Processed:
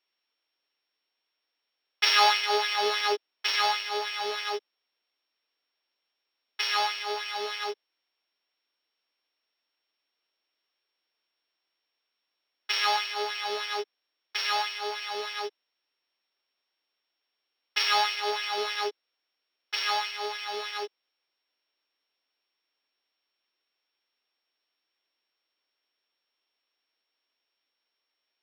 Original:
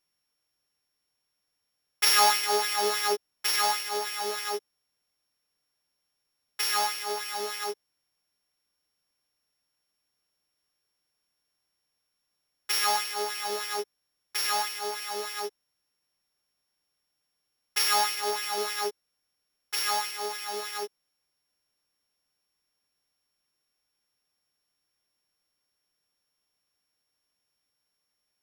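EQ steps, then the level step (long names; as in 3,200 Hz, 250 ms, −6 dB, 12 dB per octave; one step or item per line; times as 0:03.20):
Savitzky-Golay smoothing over 15 samples
high-pass filter 280 Hz 24 dB per octave
parametric band 3,200 Hz +6.5 dB 1.1 octaves
0.0 dB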